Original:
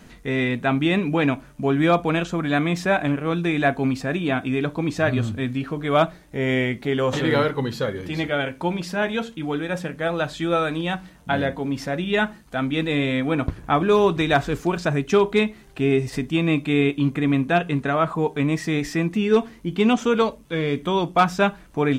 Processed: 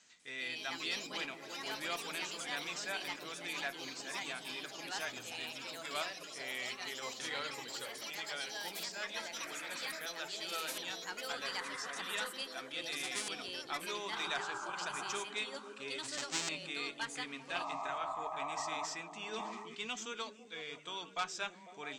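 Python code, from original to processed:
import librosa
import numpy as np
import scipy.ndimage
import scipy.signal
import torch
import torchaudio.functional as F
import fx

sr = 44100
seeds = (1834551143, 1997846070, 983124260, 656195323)

p1 = fx.halfwave_hold(x, sr, at=(16.03, 16.49))
p2 = scipy.signal.sosfilt(scipy.signal.butter(12, 8100.0, 'lowpass', fs=sr, output='sos'), p1)
p3 = np.diff(p2, prepend=0.0)
p4 = fx.auto_swell(p3, sr, attack_ms=731.0, at=(6.43, 7.2))
p5 = fx.spec_paint(p4, sr, seeds[0], shape='noise', start_s=17.54, length_s=1.32, low_hz=600.0, high_hz=1300.0, level_db=-37.0)
p6 = fx.cheby_harmonics(p5, sr, harmonics=(6,), levels_db=(-32,), full_scale_db=-14.0)
p7 = p6 + fx.echo_stepped(p6, sr, ms=166, hz=170.0, octaves=0.7, feedback_pct=70, wet_db=-2, dry=0)
p8 = fx.echo_pitch(p7, sr, ms=196, semitones=4, count=3, db_per_echo=-3.0)
p9 = fx.sustainer(p8, sr, db_per_s=31.0, at=(19.14, 19.77))
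y = F.gain(torch.from_numpy(p9), -4.0).numpy()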